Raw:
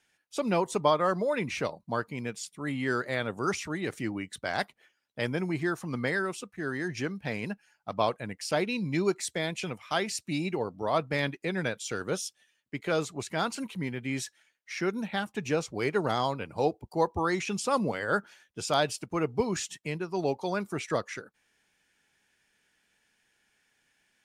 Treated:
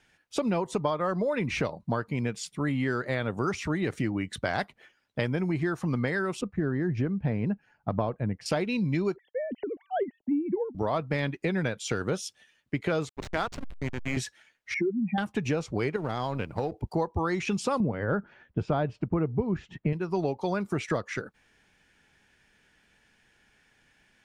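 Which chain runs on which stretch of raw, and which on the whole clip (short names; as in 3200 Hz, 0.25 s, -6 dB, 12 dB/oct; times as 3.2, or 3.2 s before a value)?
6.41–8.46 LPF 1100 Hz 6 dB/oct + low shelf 360 Hz +6 dB
9.16–10.75 sine-wave speech + running mean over 36 samples
13.09–14.17 weighting filter A + backlash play -30 dBFS
14.74–15.18 spectral contrast raised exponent 3.5 + notches 50/100/150 Hz
15.96–16.72 G.711 law mismatch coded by A + compressor 3:1, threshold -32 dBFS
17.8–19.93 LPF 2000 Hz + low shelf 410 Hz +9 dB
whole clip: LPF 3500 Hz 6 dB/oct; low shelf 140 Hz +9.5 dB; compressor, threshold -33 dBFS; gain +8 dB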